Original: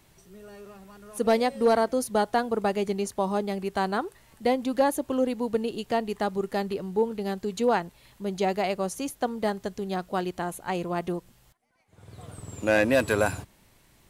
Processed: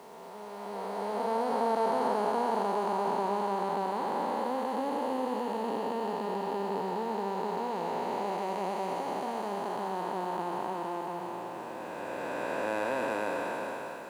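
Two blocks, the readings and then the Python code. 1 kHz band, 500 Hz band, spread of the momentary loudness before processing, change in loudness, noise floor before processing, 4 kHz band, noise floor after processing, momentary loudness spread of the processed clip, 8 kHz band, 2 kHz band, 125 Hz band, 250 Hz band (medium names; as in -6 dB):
0.0 dB, -5.5 dB, 13 LU, -5.0 dB, -60 dBFS, -7.0 dB, -41 dBFS, 9 LU, -11.0 dB, -7.5 dB, -9.5 dB, -7.5 dB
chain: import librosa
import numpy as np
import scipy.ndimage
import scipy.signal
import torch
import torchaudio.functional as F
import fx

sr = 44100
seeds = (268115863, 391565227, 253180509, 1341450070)

y = fx.spec_blur(x, sr, span_ms=1450.0)
y = scipy.signal.sosfilt(scipy.signal.butter(2, 260.0, 'highpass', fs=sr, output='sos'), y)
y = fx.peak_eq(y, sr, hz=940.0, db=13.5, octaves=0.48)
y = y + 10.0 ** (-9.0 / 20.0) * np.pad(y, (int(124 * sr / 1000.0), 0))[:len(y)]
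y = fx.quant_dither(y, sr, seeds[0], bits=10, dither='triangular')
y = fx.high_shelf(y, sr, hz=8100.0, db=-8.5)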